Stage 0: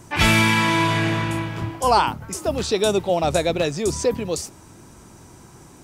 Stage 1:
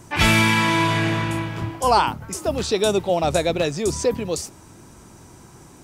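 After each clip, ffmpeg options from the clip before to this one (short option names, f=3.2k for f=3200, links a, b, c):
-af anull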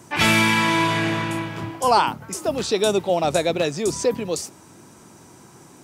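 -af "highpass=140"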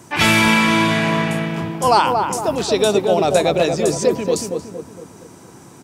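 -filter_complex "[0:a]asplit=2[a][b];[b]adelay=231,lowpass=f=1.1k:p=1,volume=-3dB,asplit=2[c][d];[d]adelay=231,lowpass=f=1.1k:p=1,volume=0.5,asplit=2[e][f];[f]adelay=231,lowpass=f=1.1k:p=1,volume=0.5,asplit=2[g][h];[h]adelay=231,lowpass=f=1.1k:p=1,volume=0.5,asplit=2[i][j];[j]adelay=231,lowpass=f=1.1k:p=1,volume=0.5,asplit=2[k][l];[l]adelay=231,lowpass=f=1.1k:p=1,volume=0.5,asplit=2[m][n];[n]adelay=231,lowpass=f=1.1k:p=1,volume=0.5[o];[a][c][e][g][i][k][m][o]amix=inputs=8:normalize=0,volume=3dB"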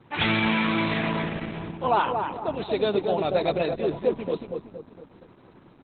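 -af "volume=-7.5dB" -ar 48000 -c:a libopus -b:a 8k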